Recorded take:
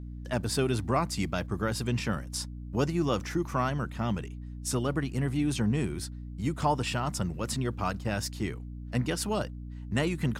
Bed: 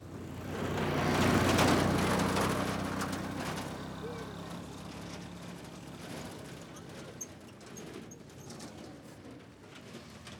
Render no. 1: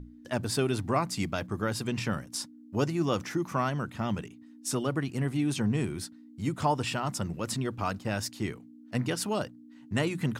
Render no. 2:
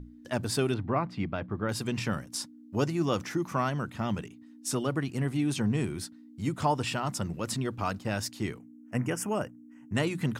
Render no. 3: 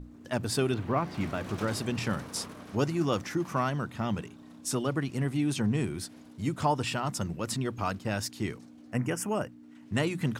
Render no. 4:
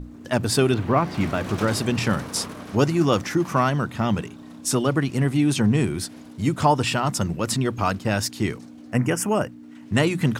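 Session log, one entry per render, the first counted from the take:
hum notches 60/120/180 Hz
0.74–1.69 s: distance through air 360 m; 8.59–9.95 s: Butterworth band-stop 4 kHz, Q 1.3
add bed -14.5 dB
trim +8.5 dB

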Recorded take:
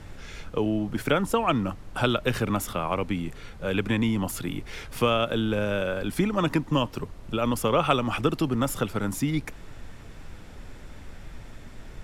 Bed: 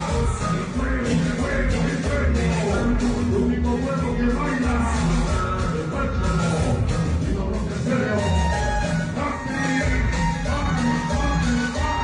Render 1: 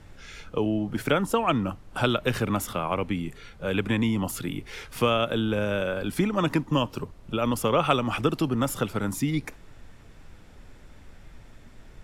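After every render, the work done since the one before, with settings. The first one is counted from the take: noise print and reduce 6 dB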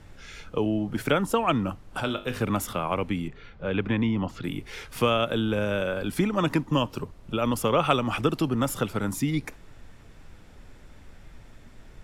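2.00–2.41 s: feedback comb 50 Hz, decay 0.38 s, mix 70%; 3.28–4.44 s: distance through air 200 m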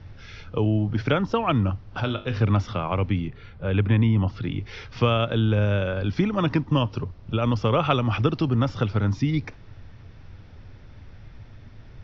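steep low-pass 5.8 kHz 72 dB/octave; peaking EQ 99 Hz +13 dB 0.87 oct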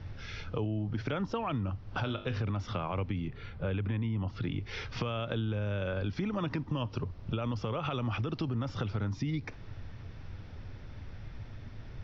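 peak limiter -16 dBFS, peak gain reduction 11 dB; compression 4:1, threshold -31 dBFS, peak gain reduction 10 dB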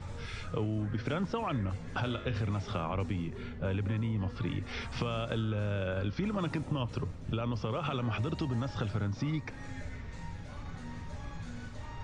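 add bed -24.5 dB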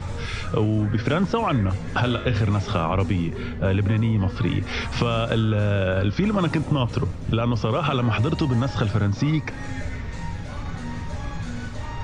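trim +11.5 dB

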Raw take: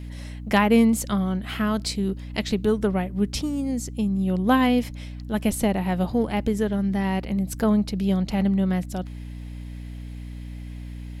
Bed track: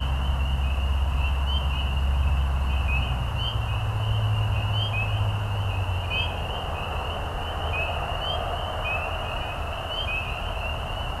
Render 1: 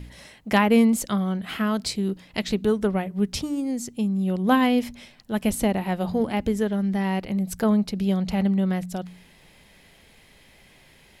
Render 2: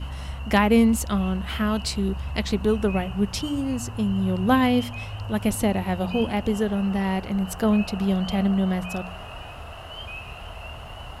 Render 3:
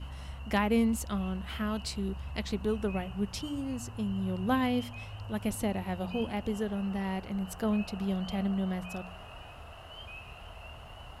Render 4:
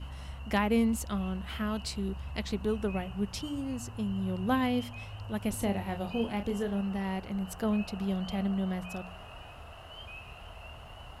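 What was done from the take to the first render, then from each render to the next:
de-hum 60 Hz, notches 5
add bed track -8.5 dB
trim -9 dB
5.50–6.81 s: doubling 30 ms -7.5 dB

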